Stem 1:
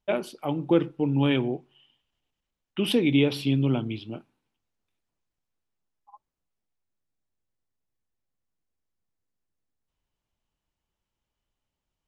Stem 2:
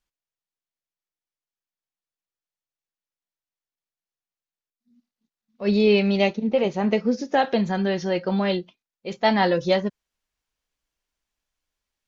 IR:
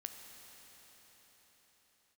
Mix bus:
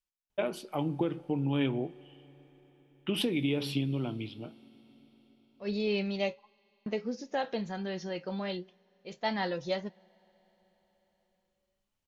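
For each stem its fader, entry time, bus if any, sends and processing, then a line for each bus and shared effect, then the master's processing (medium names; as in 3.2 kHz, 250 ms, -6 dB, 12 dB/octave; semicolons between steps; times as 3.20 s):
+1.5 dB, 0.30 s, send -12.5 dB, compression, threshold -24 dBFS, peak gain reduction 9.5 dB; auto duck -12 dB, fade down 1.85 s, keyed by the second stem
-8.5 dB, 0.00 s, muted 6.34–6.86 s, send -20.5 dB, treble shelf 4.2 kHz +6 dB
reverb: on, pre-delay 11 ms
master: flange 1.5 Hz, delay 5.2 ms, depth 2.1 ms, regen +79%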